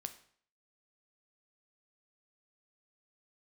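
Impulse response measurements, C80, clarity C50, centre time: 17.0 dB, 13.5 dB, 6 ms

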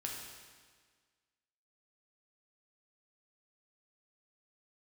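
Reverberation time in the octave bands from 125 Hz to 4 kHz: 1.6, 1.7, 1.6, 1.6, 1.6, 1.5 seconds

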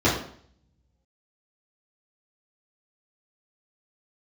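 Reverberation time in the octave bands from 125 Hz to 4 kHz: 1.2, 0.65, 0.60, 0.55, 0.50, 0.50 seconds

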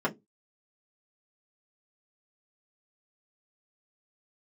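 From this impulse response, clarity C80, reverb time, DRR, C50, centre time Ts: 31.0 dB, 0.20 s, −5.0 dB, 21.5 dB, 8 ms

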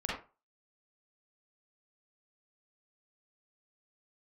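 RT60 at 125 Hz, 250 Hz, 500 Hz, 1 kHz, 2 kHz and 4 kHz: 0.30, 0.30, 0.30, 0.30, 0.25, 0.20 seconds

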